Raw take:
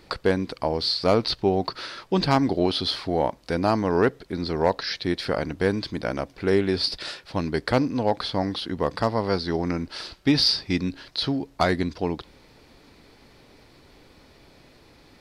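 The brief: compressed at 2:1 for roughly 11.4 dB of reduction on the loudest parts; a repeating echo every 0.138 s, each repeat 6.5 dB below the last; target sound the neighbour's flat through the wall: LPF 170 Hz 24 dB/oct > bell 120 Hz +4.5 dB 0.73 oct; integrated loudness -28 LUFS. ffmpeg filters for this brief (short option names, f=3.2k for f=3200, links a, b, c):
-af "acompressor=threshold=-37dB:ratio=2,lowpass=f=170:w=0.5412,lowpass=f=170:w=1.3066,equalizer=f=120:t=o:w=0.73:g=4.5,aecho=1:1:138|276|414|552|690|828:0.473|0.222|0.105|0.0491|0.0231|0.0109,volume=13.5dB"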